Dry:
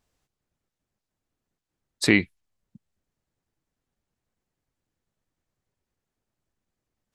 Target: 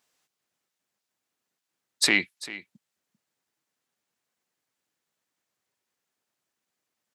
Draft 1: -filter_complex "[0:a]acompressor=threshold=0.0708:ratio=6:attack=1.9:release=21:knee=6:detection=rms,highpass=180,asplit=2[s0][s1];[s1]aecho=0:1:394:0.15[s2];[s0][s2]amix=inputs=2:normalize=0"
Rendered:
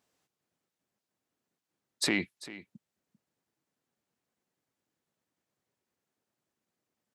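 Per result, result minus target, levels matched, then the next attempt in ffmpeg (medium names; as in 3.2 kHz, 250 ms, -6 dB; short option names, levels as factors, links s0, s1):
compression: peak gain reduction +5.5 dB; 1 kHz band +3.5 dB
-filter_complex "[0:a]acompressor=threshold=0.15:ratio=6:attack=1.9:release=21:knee=6:detection=rms,highpass=180,asplit=2[s0][s1];[s1]aecho=0:1:394:0.15[s2];[s0][s2]amix=inputs=2:normalize=0"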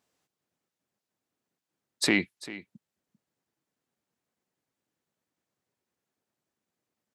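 1 kHz band +3.0 dB
-filter_complex "[0:a]acompressor=threshold=0.15:ratio=6:attack=1.9:release=21:knee=6:detection=rms,highpass=180,tiltshelf=f=710:g=-6,asplit=2[s0][s1];[s1]aecho=0:1:394:0.15[s2];[s0][s2]amix=inputs=2:normalize=0"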